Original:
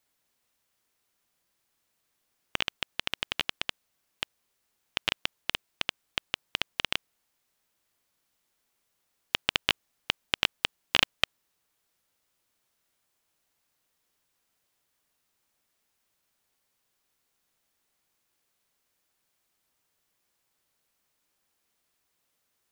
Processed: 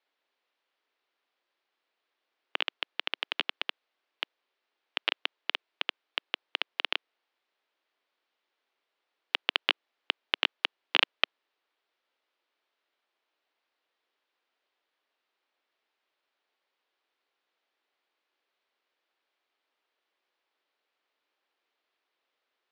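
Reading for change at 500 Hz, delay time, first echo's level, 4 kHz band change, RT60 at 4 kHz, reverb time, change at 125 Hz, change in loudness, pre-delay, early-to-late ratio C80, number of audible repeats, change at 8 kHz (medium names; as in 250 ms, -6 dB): -0.5 dB, no echo, no echo, -1.0 dB, no reverb, no reverb, under -25 dB, -0.5 dB, no reverb, no reverb, no echo, under -15 dB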